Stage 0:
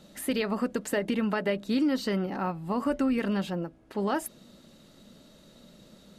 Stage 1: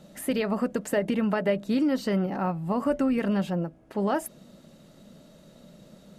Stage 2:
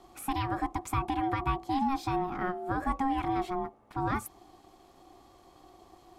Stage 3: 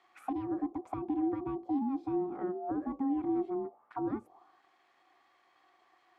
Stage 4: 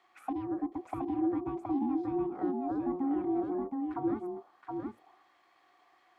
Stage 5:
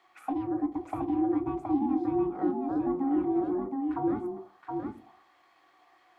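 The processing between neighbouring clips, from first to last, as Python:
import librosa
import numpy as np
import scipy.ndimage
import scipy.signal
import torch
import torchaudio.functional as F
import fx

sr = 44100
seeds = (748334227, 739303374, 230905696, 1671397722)

y1 = fx.graphic_eq_15(x, sr, hz=(160, 630, 4000), db=(6, 5, -4))
y2 = y1 * np.sin(2.0 * np.pi * 540.0 * np.arange(len(y1)) / sr)
y2 = F.gain(torch.from_numpy(y2), -2.0).numpy()
y3 = fx.auto_wah(y2, sr, base_hz=320.0, top_hz=2100.0, q=2.6, full_db=-28.0, direction='down')
y3 = F.gain(torch.from_numpy(y3), 3.0).numpy()
y4 = y3 + 10.0 ** (-3.5 / 20.0) * np.pad(y3, (int(720 * sr / 1000.0), 0))[:len(y3)]
y5 = fx.room_shoebox(y4, sr, seeds[0], volume_m3=120.0, walls='furnished', distance_m=0.59)
y5 = F.gain(torch.from_numpy(y5), 2.5).numpy()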